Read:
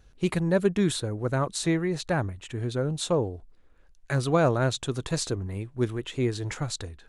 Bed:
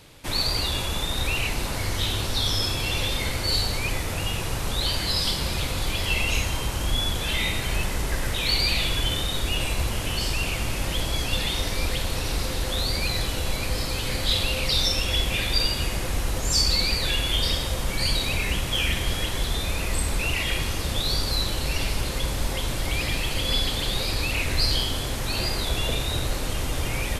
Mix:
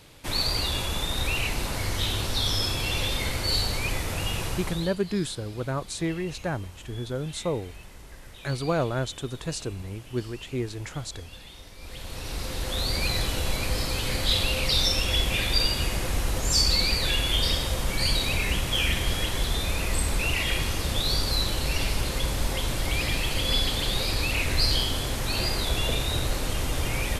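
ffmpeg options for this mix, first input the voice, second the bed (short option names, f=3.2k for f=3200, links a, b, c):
-filter_complex "[0:a]adelay=4350,volume=-3.5dB[a];[1:a]volume=17.5dB,afade=t=out:st=4.45:d=0.5:silence=0.125893,afade=t=in:st=11.78:d=1.28:silence=0.112202[b];[a][b]amix=inputs=2:normalize=0"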